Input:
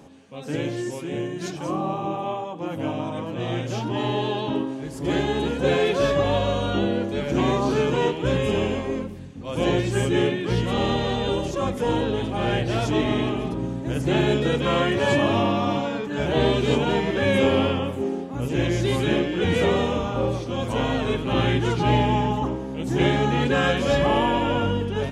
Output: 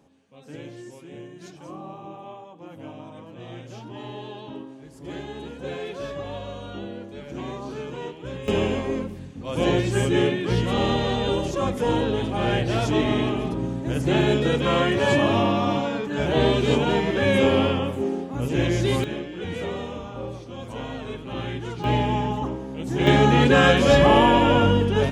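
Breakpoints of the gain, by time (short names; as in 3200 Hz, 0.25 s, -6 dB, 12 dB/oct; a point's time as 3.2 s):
-12 dB
from 8.48 s +0.5 dB
from 19.04 s -9.5 dB
from 21.84 s -2.5 dB
from 23.07 s +5 dB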